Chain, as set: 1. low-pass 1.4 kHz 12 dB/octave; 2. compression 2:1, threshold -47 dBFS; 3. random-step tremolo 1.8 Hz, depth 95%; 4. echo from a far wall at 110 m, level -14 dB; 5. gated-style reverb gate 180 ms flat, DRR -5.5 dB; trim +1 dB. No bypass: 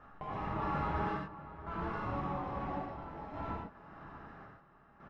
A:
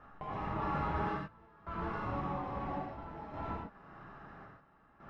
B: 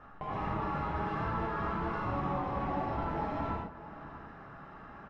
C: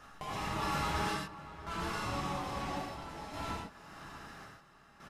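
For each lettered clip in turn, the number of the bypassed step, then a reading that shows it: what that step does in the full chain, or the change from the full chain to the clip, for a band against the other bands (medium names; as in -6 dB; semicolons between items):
4, momentary loudness spread change +1 LU; 3, crest factor change -3.0 dB; 1, 4 kHz band +16.0 dB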